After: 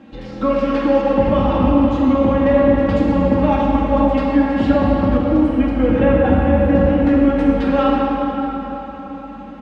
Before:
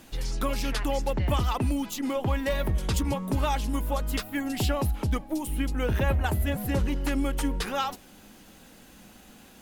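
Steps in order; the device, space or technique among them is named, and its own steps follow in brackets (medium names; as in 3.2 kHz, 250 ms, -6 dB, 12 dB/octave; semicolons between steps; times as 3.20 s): high-pass 170 Hz 12 dB/octave; low-pass 3 kHz 12 dB/octave; tilt EQ -3 dB/octave; comb 3.7 ms, depth 67%; cathedral (reverberation RT60 4.3 s, pre-delay 8 ms, DRR -5 dB); trim +3 dB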